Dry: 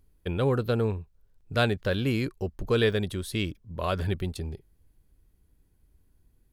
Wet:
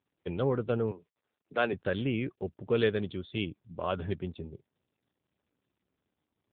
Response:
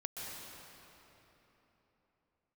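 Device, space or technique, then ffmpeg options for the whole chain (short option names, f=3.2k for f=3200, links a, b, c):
mobile call with aggressive noise cancelling: -filter_complex "[0:a]asettb=1/sr,asplit=3[a][b][c];[a]atrim=end=0.914[d];[b]atrim=start=0.91:end=1.73,asetpts=PTS-STARTPTS,afade=t=in:d=0.004:c=qsin,afade=t=out:st=0.816:d=0.004:c=qsin,acrossover=split=200 5100:gain=0.0708 1 0.126[e][f][g];[e][f][g]amix=inputs=3:normalize=0[h];[c]atrim=start=1.726[i];[d][h]acrossfade=d=0.004:c1=hsin:c2=qsin[j];[j][i]acrossfade=d=0.004:c1=qsin:c2=hsin,highpass=f=130:p=1,afftdn=nr=12:nf=-47,volume=-2dB" -ar 8000 -c:a libopencore_amrnb -b:a 7950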